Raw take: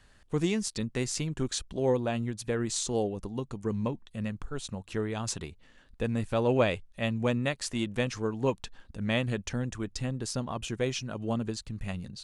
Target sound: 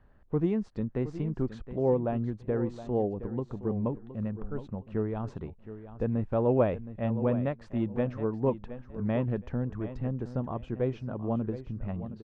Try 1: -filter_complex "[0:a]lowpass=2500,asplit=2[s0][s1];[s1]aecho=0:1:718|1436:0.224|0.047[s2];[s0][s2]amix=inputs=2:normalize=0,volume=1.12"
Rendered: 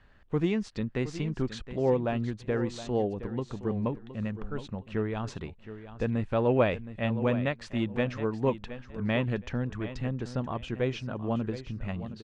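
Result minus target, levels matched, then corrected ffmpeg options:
2 kHz band +10.0 dB
-filter_complex "[0:a]lowpass=990,asplit=2[s0][s1];[s1]aecho=0:1:718|1436:0.224|0.047[s2];[s0][s2]amix=inputs=2:normalize=0,volume=1.12"

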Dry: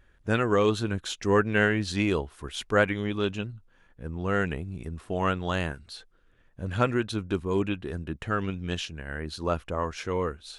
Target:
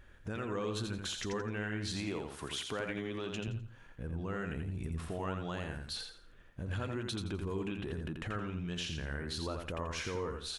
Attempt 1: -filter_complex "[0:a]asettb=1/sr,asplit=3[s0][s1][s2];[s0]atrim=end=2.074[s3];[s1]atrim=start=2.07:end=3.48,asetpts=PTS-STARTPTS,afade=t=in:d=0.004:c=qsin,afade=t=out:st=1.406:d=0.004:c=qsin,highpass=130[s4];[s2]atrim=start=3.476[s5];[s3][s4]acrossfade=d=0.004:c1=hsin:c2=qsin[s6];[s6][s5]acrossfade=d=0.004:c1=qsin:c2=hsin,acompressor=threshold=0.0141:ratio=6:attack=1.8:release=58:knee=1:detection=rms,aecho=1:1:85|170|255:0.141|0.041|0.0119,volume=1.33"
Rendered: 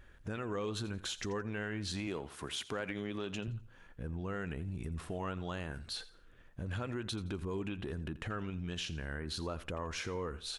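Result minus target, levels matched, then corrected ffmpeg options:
echo-to-direct -11.5 dB
-filter_complex "[0:a]asettb=1/sr,asplit=3[s0][s1][s2];[s0]atrim=end=2.074[s3];[s1]atrim=start=2.07:end=3.48,asetpts=PTS-STARTPTS,afade=t=in:d=0.004:c=qsin,afade=t=out:st=1.406:d=0.004:c=qsin,highpass=130[s4];[s2]atrim=start=3.476[s5];[s3][s4]acrossfade=d=0.004:c1=hsin:c2=qsin[s6];[s6][s5]acrossfade=d=0.004:c1=qsin:c2=hsin,acompressor=threshold=0.0141:ratio=6:attack=1.8:release=58:knee=1:detection=rms,aecho=1:1:85|170|255|340:0.531|0.154|0.0446|0.0129,volume=1.33"

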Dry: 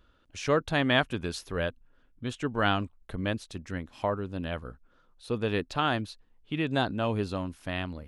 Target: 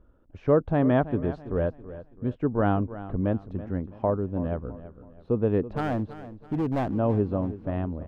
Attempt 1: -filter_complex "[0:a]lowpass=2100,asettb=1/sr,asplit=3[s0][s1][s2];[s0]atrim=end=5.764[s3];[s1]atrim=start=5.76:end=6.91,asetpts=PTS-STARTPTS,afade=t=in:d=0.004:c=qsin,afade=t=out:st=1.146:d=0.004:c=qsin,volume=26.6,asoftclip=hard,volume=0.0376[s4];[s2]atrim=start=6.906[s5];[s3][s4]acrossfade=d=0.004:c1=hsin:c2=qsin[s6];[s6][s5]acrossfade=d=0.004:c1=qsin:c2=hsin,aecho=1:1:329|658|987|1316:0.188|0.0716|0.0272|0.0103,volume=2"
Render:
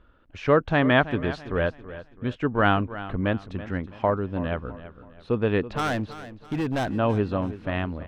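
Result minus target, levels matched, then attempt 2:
2 kHz band +11.0 dB
-filter_complex "[0:a]lowpass=710,asettb=1/sr,asplit=3[s0][s1][s2];[s0]atrim=end=5.764[s3];[s1]atrim=start=5.76:end=6.91,asetpts=PTS-STARTPTS,afade=t=in:d=0.004:c=qsin,afade=t=out:st=1.146:d=0.004:c=qsin,volume=26.6,asoftclip=hard,volume=0.0376[s4];[s2]atrim=start=6.906[s5];[s3][s4]acrossfade=d=0.004:c1=hsin:c2=qsin[s6];[s6][s5]acrossfade=d=0.004:c1=qsin:c2=hsin,aecho=1:1:329|658|987|1316:0.188|0.0716|0.0272|0.0103,volume=2"

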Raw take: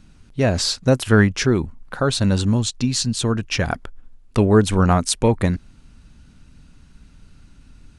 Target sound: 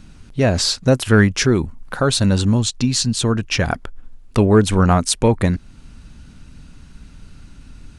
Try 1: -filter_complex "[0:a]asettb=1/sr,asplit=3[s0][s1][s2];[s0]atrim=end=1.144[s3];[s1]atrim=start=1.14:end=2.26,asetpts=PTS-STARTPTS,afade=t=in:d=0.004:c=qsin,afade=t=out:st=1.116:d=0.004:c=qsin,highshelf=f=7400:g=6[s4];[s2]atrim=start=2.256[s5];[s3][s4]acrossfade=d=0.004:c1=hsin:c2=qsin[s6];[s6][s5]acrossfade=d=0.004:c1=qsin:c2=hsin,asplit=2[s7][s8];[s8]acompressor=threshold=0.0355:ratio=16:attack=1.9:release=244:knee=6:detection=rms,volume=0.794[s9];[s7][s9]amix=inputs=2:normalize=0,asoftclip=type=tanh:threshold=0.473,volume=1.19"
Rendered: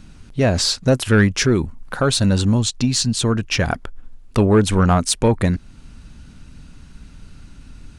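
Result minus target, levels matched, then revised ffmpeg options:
saturation: distortion +10 dB
-filter_complex "[0:a]asettb=1/sr,asplit=3[s0][s1][s2];[s0]atrim=end=1.144[s3];[s1]atrim=start=1.14:end=2.26,asetpts=PTS-STARTPTS,afade=t=in:d=0.004:c=qsin,afade=t=out:st=1.116:d=0.004:c=qsin,highshelf=f=7400:g=6[s4];[s2]atrim=start=2.256[s5];[s3][s4]acrossfade=d=0.004:c1=hsin:c2=qsin[s6];[s6][s5]acrossfade=d=0.004:c1=qsin:c2=hsin,asplit=2[s7][s8];[s8]acompressor=threshold=0.0355:ratio=16:attack=1.9:release=244:knee=6:detection=rms,volume=0.794[s9];[s7][s9]amix=inputs=2:normalize=0,asoftclip=type=tanh:threshold=1,volume=1.19"

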